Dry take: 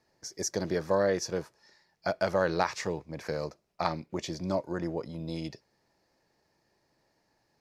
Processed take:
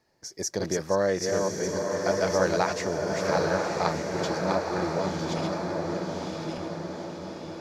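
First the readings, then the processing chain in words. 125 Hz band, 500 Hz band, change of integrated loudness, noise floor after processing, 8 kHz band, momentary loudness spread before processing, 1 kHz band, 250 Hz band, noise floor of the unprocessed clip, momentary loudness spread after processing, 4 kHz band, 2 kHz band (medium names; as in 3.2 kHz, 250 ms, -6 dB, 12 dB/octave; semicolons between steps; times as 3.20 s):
+5.0 dB, +5.5 dB, +4.0 dB, -46 dBFS, +5.5 dB, 10 LU, +5.5 dB, +5.5 dB, -74 dBFS, 10 LU, +5.5 dB, +5.5 dB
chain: backward echo that repeats 598 ms, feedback 42%, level -3.5 dB; on a send: echo that smears into a reverb 984 ms, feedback 53%, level -3 dB; on the sum: trim +1.5 dB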